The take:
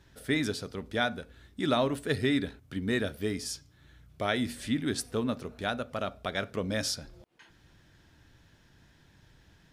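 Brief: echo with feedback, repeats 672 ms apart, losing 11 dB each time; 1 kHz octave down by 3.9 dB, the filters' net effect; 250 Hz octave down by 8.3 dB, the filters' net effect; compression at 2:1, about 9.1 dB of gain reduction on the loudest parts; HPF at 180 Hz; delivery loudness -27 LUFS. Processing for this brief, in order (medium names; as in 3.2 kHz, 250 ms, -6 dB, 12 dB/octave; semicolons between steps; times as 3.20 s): high-pass 180 Hz; peaking EQ 250 Hz -8.5 dB; peaking EQ 1 kHz -5.5 dB; compression 2:1, threshold -43 dBFS; feedback delay 672 ms, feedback 28%, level -11 dB; trim +16 dB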